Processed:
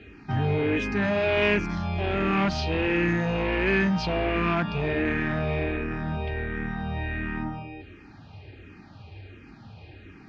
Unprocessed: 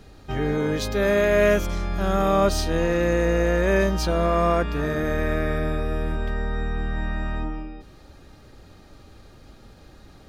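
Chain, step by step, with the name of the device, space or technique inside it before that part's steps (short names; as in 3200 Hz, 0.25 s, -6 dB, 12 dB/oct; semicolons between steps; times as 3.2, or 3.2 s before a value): barber-pole phaser into a guitar amplifier (endless phaser -1.4 Hz; soft clip -23.5 dBFS, distortion -11 dB; speaker cabinet 89–4200 Hz, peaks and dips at 97 Hz +10 dB, 540 Hz -10 dB, 1200 Hz -6 dB, 2500 Hz +8 dB, 3800 Hz -6 dB); gain +6 dB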